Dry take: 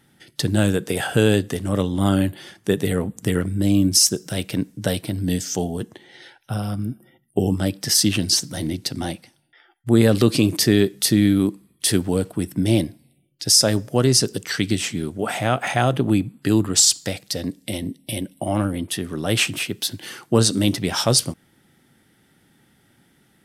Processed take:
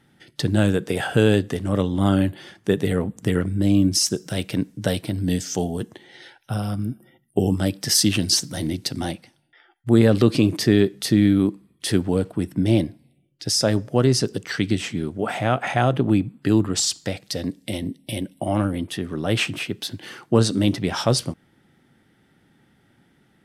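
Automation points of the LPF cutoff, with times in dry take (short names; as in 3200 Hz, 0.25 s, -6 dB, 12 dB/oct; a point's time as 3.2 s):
LPF 6 dB/oct
3900 Hz
from 4.1 s 6500 Hz
from 5.57 s 12000 Hz
from 9.11 s 4800 Hz
from 9.99 s 2800 Hz
from 17.23 s 5300 Hz
from 18.91 s 2800 Hz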